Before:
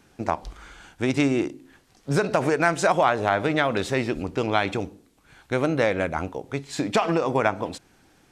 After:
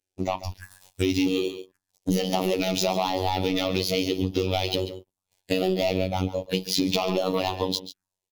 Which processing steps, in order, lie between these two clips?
pitch shift switched off and on +3 st, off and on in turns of 422 ms; treble shelf 3.4 kHz +10 dB; waveshaping leveller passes 5; level rider; spectral noise reduction 12 dB; touch-sensitive phaser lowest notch 200 Hz, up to 1.6 kHz, full sweep at -15 dBFS; robot voice 93.4 Hz; on a send: delay 138 ms -15.5 dB; on the sum: compression, threshold -13 dBFS, peak gain reduction 9.5 dB; trim -7 dB

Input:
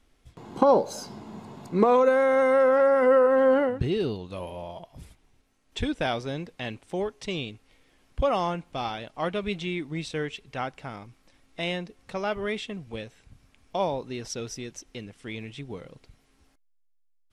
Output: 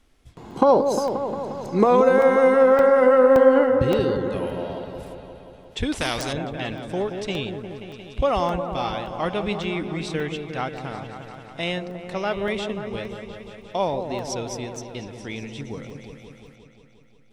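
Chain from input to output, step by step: delay with an opening low-pass 177 ms, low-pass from 750 Hz, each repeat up 1 oct, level -6 dB; crackling interface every 0.57 s, samples 64, zero, from 0.51 s; 5.92–6.33 s: spectrum-flattening compressor 2:1; trim +3 dB

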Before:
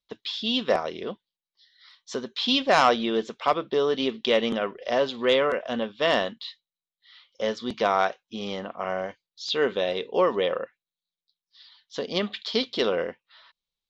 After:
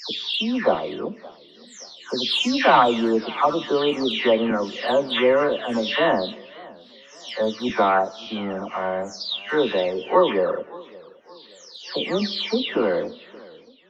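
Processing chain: delay that grows with frequency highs early, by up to 413 ms; small resonant body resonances 290/920 Hz, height 8 dB; on a send at -18.5 dB: reverberation RT60 1.2 s, pre-delay 3 ms; on the sum: modulated delay 571 ms, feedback 42%, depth 135 cents, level -22 dB; trim +4 dB

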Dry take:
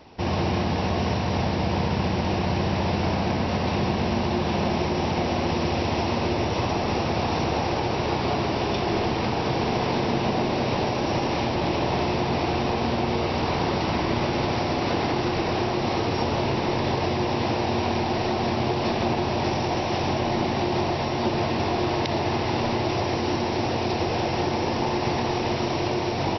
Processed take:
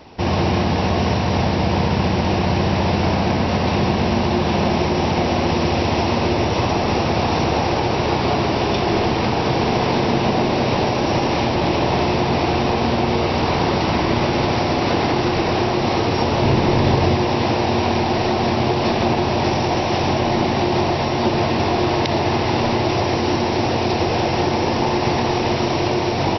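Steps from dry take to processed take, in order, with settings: 16.42–17.16 s: bass shelf 230 Hz +6.5 dB; trim +6 dB

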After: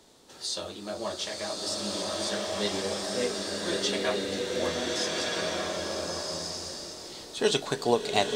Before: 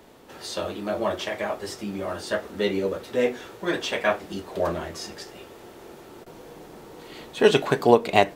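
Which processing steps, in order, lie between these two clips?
high-order bell 5.8 kHz +12 dB; swelling reverb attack 1510 ms, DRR -3.5 dB; trim -8.5 dB

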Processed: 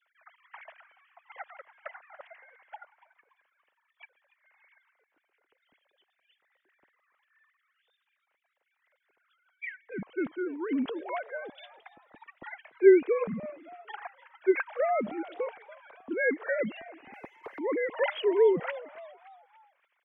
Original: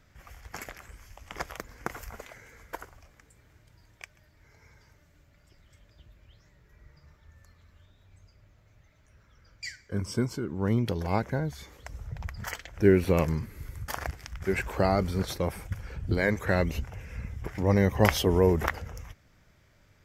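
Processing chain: formants replaced by sine waves; 17.13–17.59 s: waveshaping leveller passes 1; on a send: frequency-shifting echo 286 ms, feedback 45%, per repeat +110 Hz, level -18.5 dB; on the sum: trim -2 dB

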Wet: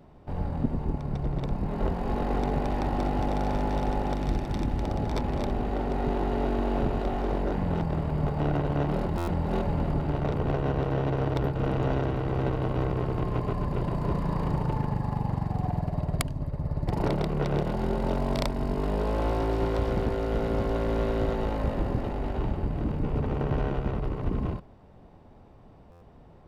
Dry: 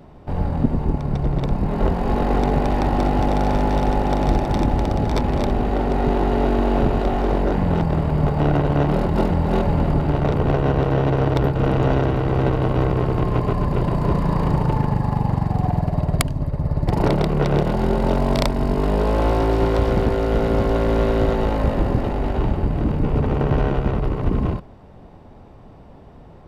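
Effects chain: 4.13–4.83 s: peaking EQ 690 Hz -5.5 dB 1.6 oct; buffer glitch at 9.17/25.91 s, samples 512, times 8; trim -8.5 dB

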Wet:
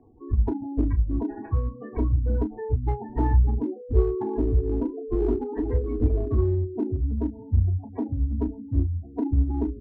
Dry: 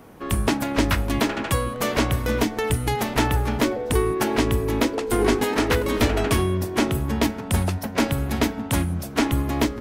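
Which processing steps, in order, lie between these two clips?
band-stop 1.4 kHz, Q 14; spectral gate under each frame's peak -10 dB strong; inverse Chebyshev low-pass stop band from 3.6 kHz, stop band 40 dB; bass shelf 210 Hz +10 dB; static phaser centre 860 Hz, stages 8; in parallel at -6.5 dB: overload inside the chain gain 17.5 dB; on the sum: doubling 32 ms -10 dB; upward expansion 1.5:1, over -23 dBFS; trim -5 dB

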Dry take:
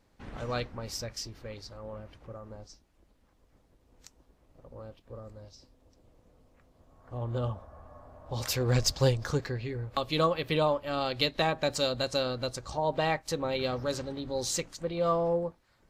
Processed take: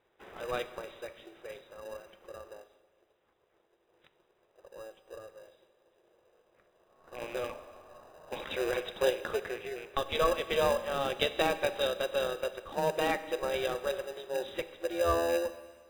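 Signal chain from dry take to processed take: rattle on loud lows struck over -33 dBFS, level -34 dBFS; FFT band-pass 330–3900 Hz; in parallel at -5.5 dB: sample-and-hold 40×; 5.42–7.40 s: on the sum: flutter echo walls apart 10.6 m, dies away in 0.35 s; Schroeder reverb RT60 1.5 s, combs from 30 ms, DRR 12.5 dB; trim -1.5 dB

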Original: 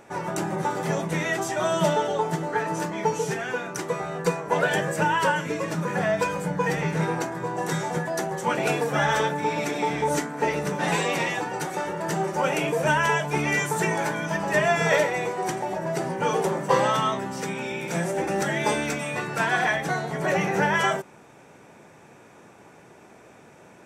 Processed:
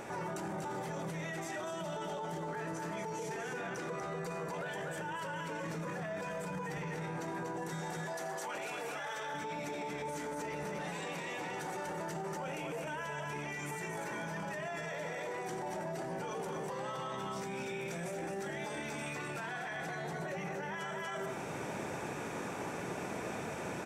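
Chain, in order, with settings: 3.37–4.15 s: treble shelf 8.2 kHz -10 dB; 7.82–9.34 s: high-pass 750 Hz 6 dB/octave; delay 240 ms -6 dB; reverberation RT60 0.50 s, pre-delay 68 ms, DRR 14 dB; peak limiter -37 dBFS, peak gain reduction 28.5 dB; gain riding within 4 dB 0.5 s; trim +5 dB

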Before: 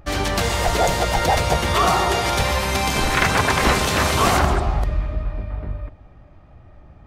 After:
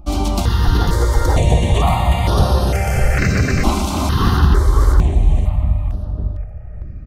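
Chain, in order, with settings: bass shelf 370 Hz +12 dB; gain riding within 4 dB 2 s; on a send: feedback delay 553 ms, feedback 25%, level -5.5 dB; on the sum: stepped phaser 2.2 Hz 470–7400 Hz; trim -2 dB

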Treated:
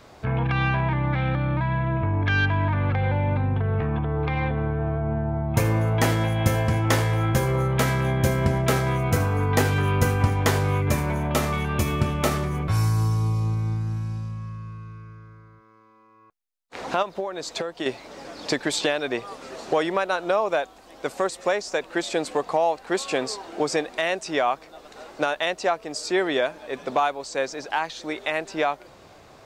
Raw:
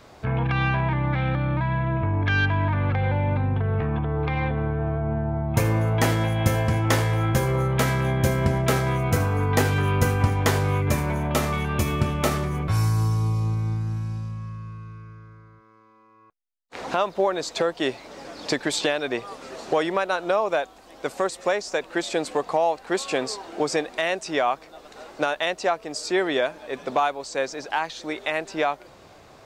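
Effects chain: 17.02–17.86 s: compression 6:1, threshold -26 dBFS, peak gain reduction 9 dB

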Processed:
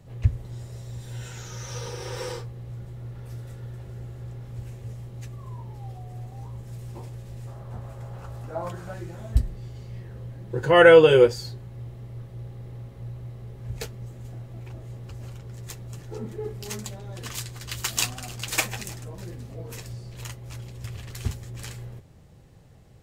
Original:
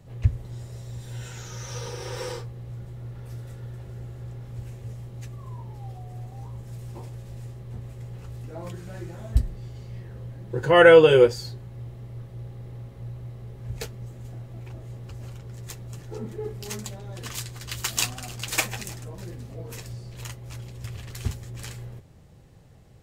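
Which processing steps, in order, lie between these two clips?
7.47–8.94 s: high-order bell 930 Hz +9.5 dB

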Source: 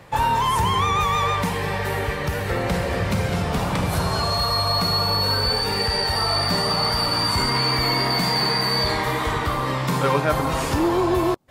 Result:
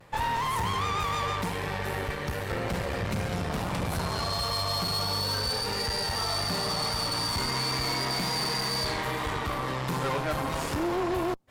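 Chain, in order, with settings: vibrato 0.39 Hz 21 cents; valve stage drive 22 dB, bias 0.8; trim -2.5 dB

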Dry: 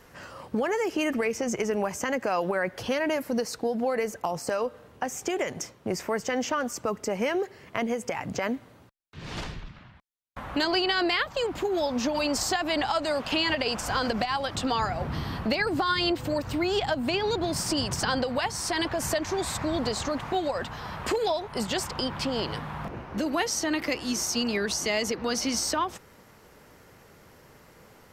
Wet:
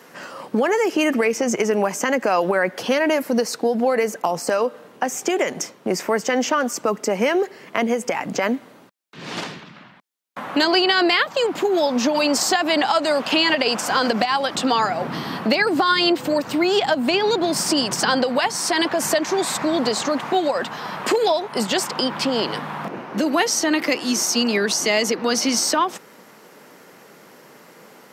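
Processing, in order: high-pass 180 Hz 24 dB/octave; trim +8 dB

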